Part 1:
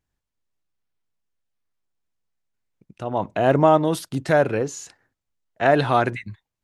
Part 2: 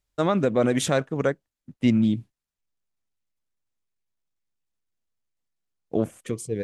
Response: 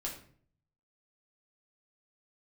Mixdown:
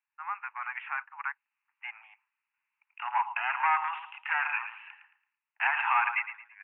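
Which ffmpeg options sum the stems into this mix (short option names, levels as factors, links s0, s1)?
-filter_complex "[0:a]highshelf=f=2400:t=q:w=1.5:g=9,volume=0.708,asplit=3[s0][s1][s2];[s1]volume=0.251[s3];[1:a]volume=0.266[s4];[s2]apad=whole_len=292614[s5];[s4][s5]sidechaincompress=threshold=0.0251:ratio=8:attack=47:release=587[s6];[s3]aecho=0:1:111|222|333|444:1|0.29|0.0841|0.0244[s7];[s0][s6][s7]amix=inputs=3:normalize=0,dynaudnorm=f=220:g=3:m=3.76,asoftclip=type=tanh:threshold=0.251,asuperpass=centerf=1500:order=20:qfactor=0.81"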